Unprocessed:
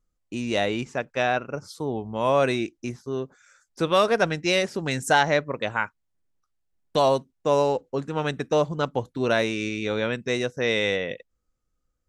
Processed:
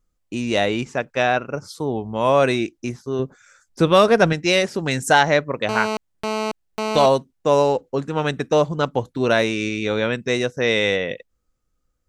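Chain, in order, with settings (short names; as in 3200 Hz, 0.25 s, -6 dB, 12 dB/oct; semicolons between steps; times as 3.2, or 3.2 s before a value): 3.19–4.33 low shelf 310 Hz +7.5 dB; 5.69–7.06 GSM buzz -28 dBFS; gain +4.5 dB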